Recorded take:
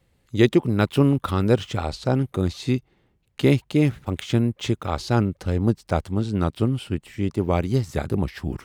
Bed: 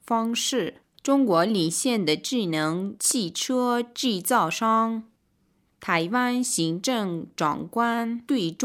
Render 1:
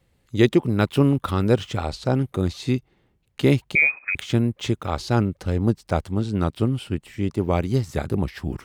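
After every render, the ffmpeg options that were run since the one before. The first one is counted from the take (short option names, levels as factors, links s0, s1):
-filter_complex "[0:a]asettb=1/sr,asplit=3[s0][s1][s2];[s0]atrim=end=3.754[s3];[s1]atrim=start=3.75:end=4.15,asetpts=PTS-STARTPTS,afade=t=in:d=0.004:c=qsin,afade=t=out:st=0.396:d=0.004:c=qsin,lowpass=f=2200:t=q:w=0.5098,lowpass=f=2200:t=q:w=0.6013,lowpass=f=2200:t=q:w=0.9,lowpass=f=2200:t=q:w=2.563,afreqshift=-2600[s4];[s2]atrim=start=4.146[s5];[s3][s4]acrossfade=d=0.004:c1=hsin:c2=qsin[s6];[s6][s5]acrossfade=d=0.004:c1=qsin:c2=hsin"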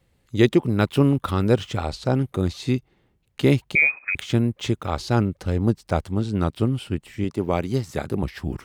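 -filter_complex "[0:a]asettb=1/sr,asplit=3[s0][s1][s2];[s0]atrim=end=7.244[s3];[s1]atrim=start=7.24:end=8.23,asetpts=PTS-STARTPTS,afade=t=in:d=0.004:c=qsin,afade=t=out:st=0.986:d=0.004:c=qsin,highpass=f=140:p=1[s4];[s2]atrim=start=8.226[s5];[s3][s4]acrossfade=d=0.004:c1=hsin:c2=qsin[s6];[s6][s5]acrossfade=d=0.004:c1=qsin:c2=hsin"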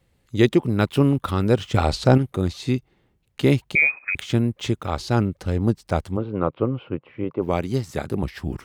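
-filter_complex "[0:a]asettb=1/sr,asplit=3[s0][s1][s2];[s0]atrim=end=1.744[s3];[s1]atrim=start=1.74:end=2.18,asetpts=PTS-STARTPTS,afade=t=in:d=0.004:c=qsin,afade=t=out:st=0.436:d=0.004:c=qsin,acontrast=87[s4];[s2]atrim=start=2.176[s5];[s3][s4]acrossfade=d=0.004:c1=hsin:c2=qsin[s6];[s6][s5]acrossfade=d=0.004:c1=qsin:c2=hsin,asplit=3[s7][s8][s9];[s7]afade=t=out:st=6.16:d=0.02[s10];[s8]highpass=130,equalizer=f=210:t=q:w=4:g=-6,equalizer=f=510:t=q:w=4:g=10,equalizer=f=1100:t=q:w=4:g=7,equalizer=f=1800:t=q:w=4:g=-8,lowpass=f=2400:w=0.5412,lowpass=f=2400:w=1.3066,afade=t=in:st=6.16:d=0.02,afade=t=out:st=7.41:d=0.02[s11];[s9]afade=t=in:st=7.41:d=0.02[s12];[s10][s11][s12]amix=inputs=3:normalize=0"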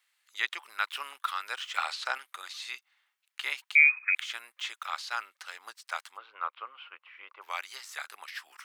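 -filter_complex "[0:a]acrossover=split=3300[s0][s1];[s1]acompressor=threshold=0.00891:ratio=4:attack=1:release=60[s2];[s0][s2]amix=inputs=2:normalize=0,highpass=f=1200:w=0.5412,highpass=f=1200:w=1.3066"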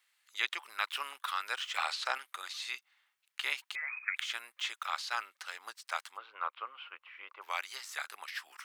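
-af "afftfilt=real='re*lt(hypot(re,im),0.2)':imag='im*lt(hypot(re,im),0.2)':win_size=1024:overlap=0.75"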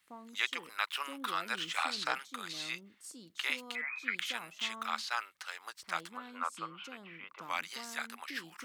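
-filter_complex "[1:a]volume=0.0473[s0];[0:a][s0]amix=inputs=2:normalize=0"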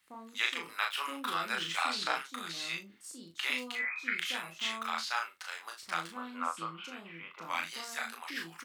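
-filter_complex "[0:a]asplit=2[s0][s1];[s1]adelay=36,volume=0.631[s2];[s0][s2]amix=inputs=2:normalize=0,aecho=1:1:24|44:0.335|0.178"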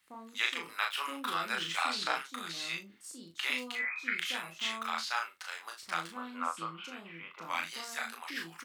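-af anull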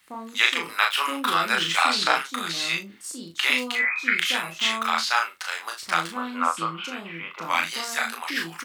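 -af "volume=3.76"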